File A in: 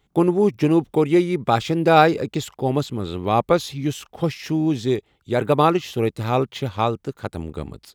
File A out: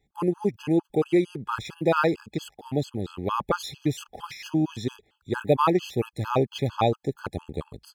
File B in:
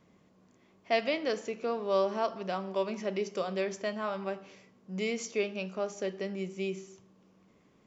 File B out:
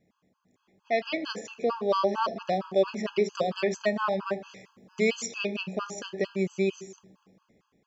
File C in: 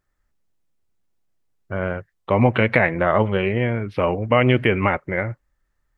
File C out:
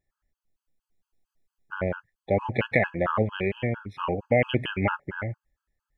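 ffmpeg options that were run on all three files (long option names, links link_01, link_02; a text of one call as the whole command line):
ffmpeg -i in.wav -af "dynaudnorm=framelen=440:gausssize=5:maxgain=14dB,afftfilt=real='re*gt(sin(2*PI*4.4*pts/sr)*(1-2*mod(floor(b*sr/1024/840),2)),0)':imag='im*gt(sin(2*PI*4.4*pts/sr)*(1-2*mod(floor(b*sr/1024/840),2)),0)':win_size=1024:overlap=0.75,volume=-4.5dB" out.wav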